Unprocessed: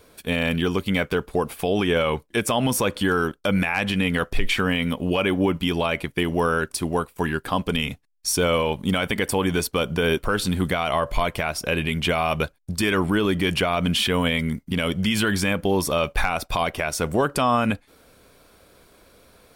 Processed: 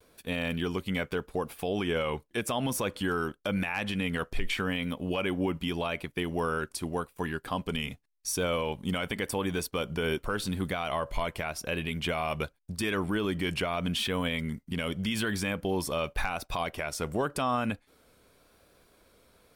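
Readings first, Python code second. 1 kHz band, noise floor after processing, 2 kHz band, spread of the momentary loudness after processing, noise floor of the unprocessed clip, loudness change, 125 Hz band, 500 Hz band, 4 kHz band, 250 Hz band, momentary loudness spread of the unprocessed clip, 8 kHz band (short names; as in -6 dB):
-8.5 dB, -67 dBFS, -8.5 dB, 5 LU, -59 dBFS, -8.5 dB, -8.5 dB, -8.5 dB, -8.5 dB, -8.5 dB, 5 LU, -8.5 dB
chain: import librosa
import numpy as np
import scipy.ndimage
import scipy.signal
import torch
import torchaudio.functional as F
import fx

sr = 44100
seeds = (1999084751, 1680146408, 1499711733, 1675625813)

y = fx.vibrato(x, sr, rate_hz=0.87, depth_cents=43.0)
y = y * librosa.db_to_amplitude(-8.5)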